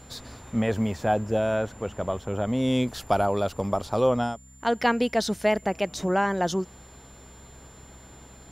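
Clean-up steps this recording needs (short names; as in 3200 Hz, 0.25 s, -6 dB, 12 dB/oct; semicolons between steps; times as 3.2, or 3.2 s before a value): de-hum 65.1 Hz, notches 4; notch 7200 Hz, Q 30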